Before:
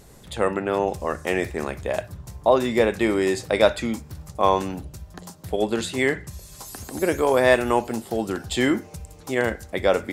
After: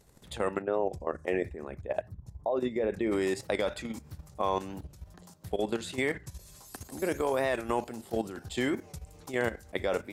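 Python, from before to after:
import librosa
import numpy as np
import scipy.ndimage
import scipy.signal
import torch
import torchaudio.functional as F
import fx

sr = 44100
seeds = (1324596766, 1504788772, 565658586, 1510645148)

y = fx.envelope_sharpen(x, sr, power=1.5, at=(0.61, 3.11), fade=0.02)
y = fx.level_steps(y, sr, step_db=12)
y = fx.record_warp(y, sr, rpm=45.0, depth_cents=100.0)
y = y * librosa.db_to_amplitude(-4.0)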